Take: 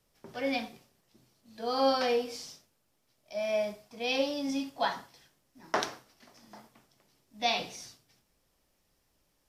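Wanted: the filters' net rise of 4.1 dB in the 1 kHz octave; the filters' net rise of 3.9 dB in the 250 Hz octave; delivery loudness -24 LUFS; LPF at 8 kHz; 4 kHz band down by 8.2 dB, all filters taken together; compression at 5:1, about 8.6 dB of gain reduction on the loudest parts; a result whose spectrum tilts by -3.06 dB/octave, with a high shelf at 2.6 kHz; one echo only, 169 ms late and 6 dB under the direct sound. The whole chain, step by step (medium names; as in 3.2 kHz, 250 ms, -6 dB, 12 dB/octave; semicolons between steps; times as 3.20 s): low-pass 8 kHz; peaking EQ 250 Hz +4 dB; peaking EQ 1 kHz +6.5 dB; treble shelf 2.6 kHz -6 dB; peaking EQ 4 kHz -5.5 dB; compression 5:1, threshold -29 dBFS; delay 169 ms -6 dB; trim +10.5 dB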